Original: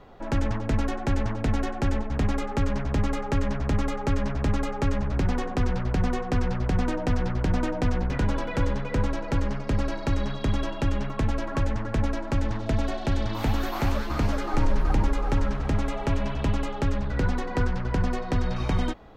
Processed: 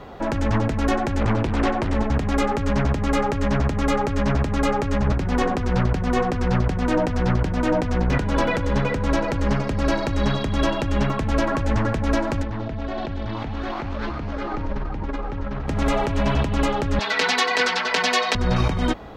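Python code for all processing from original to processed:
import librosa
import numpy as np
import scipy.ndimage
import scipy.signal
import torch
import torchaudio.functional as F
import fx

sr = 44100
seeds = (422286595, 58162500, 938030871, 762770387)

y = fx.chain(x, sr, fx.lowpass(hz=6000.0, slope=12),
    fx.doppler_dist(depth_ms=0.84), at=(1.2, 1.95))
y = fx.chain(y, sr, fx.air_absorb(metres=170.0),
    fx.env_flatten(amount_pct=100), at=(12.43, 15.67))
y = fx.chain(y, sr, fx.highpass(hz=670.0, slope=12),
    fx.peak_eq(hz=3800.0, db=11.0, octaves=1.8),
    fx.comb(ms=4.5, depth=0.98), at=(16.99, 18.35))
y = fx.highpass(y, sr, hz=43.0, slope=6)
y = fx.over_compress(y, sr, threshold_db=-29.0, ratio=-1.0)
y = F.gain(torch.from_numpy(y), 7.0).numpy()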